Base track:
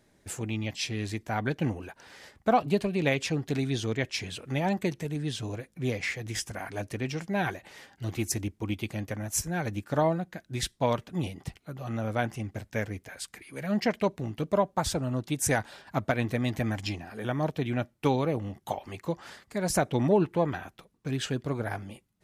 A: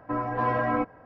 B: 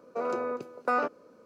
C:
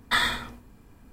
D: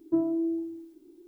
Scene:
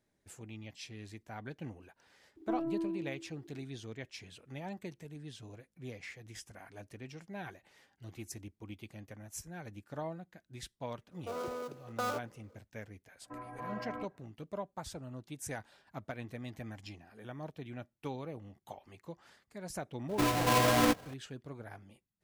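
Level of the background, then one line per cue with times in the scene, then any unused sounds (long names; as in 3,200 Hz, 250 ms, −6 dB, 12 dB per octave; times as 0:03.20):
base track −15 dB
0:02.36: mix in D −11.5 dB + mid-hump overdrive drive 20 dB, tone 1,100 Hz, clips at −15.5 dBFS
0:11.11: mix in B −8 dB + gap after every zero crossing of 0.12 ms
0:13.21: mix in A −17 dB
0:20.09: mix in A −4.5 dB + each half-wave held at its own peak
not used: C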